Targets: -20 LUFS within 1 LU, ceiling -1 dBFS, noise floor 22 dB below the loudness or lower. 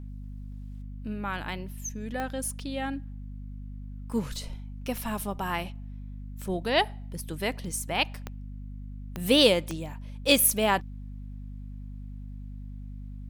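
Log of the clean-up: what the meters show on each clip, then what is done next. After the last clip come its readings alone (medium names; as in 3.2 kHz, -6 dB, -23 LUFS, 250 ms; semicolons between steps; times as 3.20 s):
clicks found 4; hum 50 Hz; highest harmonic 250 Hz; hum level -37 dBFS; loudness -28.0 LUFS; peak level -5.0 dBFS; loudness target -20.0 LUFS
-> de-click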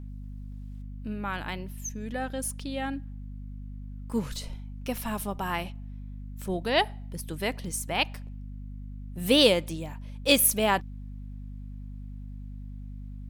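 clicks found 1; hum 50 Hz; highest harmonic 250 Hz; hum level -37 dBFS
-> hum notches 50/100/150/200/250 Hz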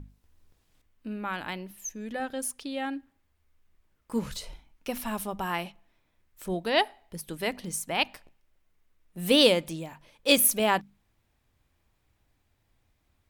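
hum not found; loudness -28.0 LUFS; peak level -5.5 dBFS; loudness target -20.0 LUFS
-> trim +8 dB; peak limiter -1 dBFS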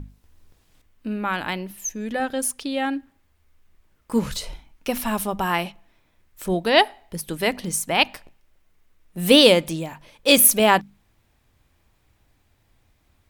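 loudness -20.5 LUFS; peak level -1.0 dBFS; noise floor -65 dBFS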